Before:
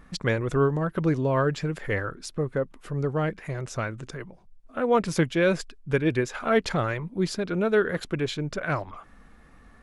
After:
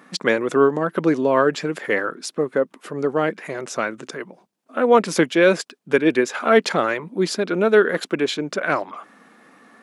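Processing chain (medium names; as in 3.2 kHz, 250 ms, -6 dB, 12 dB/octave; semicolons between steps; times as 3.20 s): high-pass 220 Hz 24 dB/octave; trim +7.5 dB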